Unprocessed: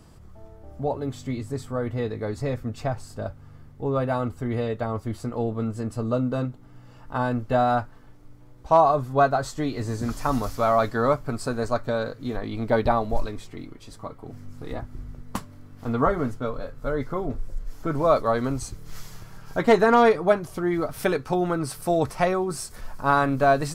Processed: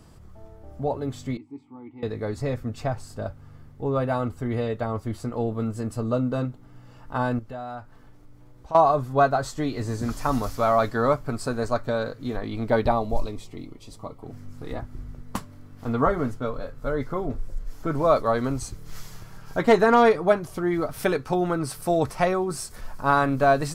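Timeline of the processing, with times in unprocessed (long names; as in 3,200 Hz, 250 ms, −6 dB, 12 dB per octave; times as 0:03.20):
0:01.37–0:02.03: formant filter u
0:05.51–0:06.00: high-shelf EQ 8,800 Hz +5.5 dB
0:07.39–0:08.75: downward compressor 2 to 1, threshold −44 dBFS
0:12.90–0:14.22: parametric band 1,600 Hz −13.5 dB 0.44 octaves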